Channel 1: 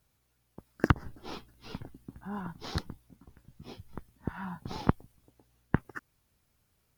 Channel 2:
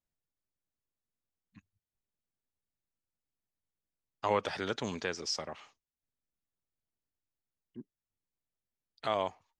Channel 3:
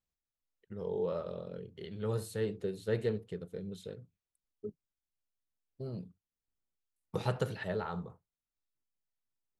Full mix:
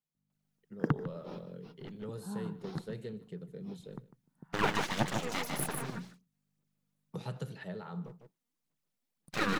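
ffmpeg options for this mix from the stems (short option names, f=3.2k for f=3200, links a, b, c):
-filter_complex "[0:a]highshelf=f=2k:g=-11,aeval=exprs='val(0)+0.00126*(sin(2*PI*50*n/s)+sin(2*PI*2*50*n/s)/2+sin(2*PI*3*50*n/s)/3+sin(2*PI*4*50*n/s)/4+sin(2*PI*5*50*n/s)/5)':c=same,volume=-6dB,asplit=2[a][b];[b]volume=-15dB[c];[1:a]aphaser=in_gain=1:out_gain=1:delay=4.3:decay=0.77:speed=1.9:type=sinusoidal,aeval=exprs='abs(val(0))':c=same,adelay=300,volume=0dB,asplit=2[d][e];[e]volume=-5dB[f];[2:a]acrossover=split=170|3000[g][h][i];[h]acompressor=threshold=-36dB:ratio=6[j];[g][j][i]amix=inputs=3:normalize=0,volume=-5.5dB,asplit=3[k][l][m];[l]volume=-19.5dB[n];[m]apad=whole_len=307720[o];[a][o]sidechaingate=range=-36dB:threshold=-54dB:ratio=16:detection=peak[p];[c][f][n]amix=inputs=3:normalize=0,aecho=0:1:150:1[q];[p][d][k][q]amix=inputs=4:normalize=0,lowshelf=f=110:t=q:w=3:g=-11"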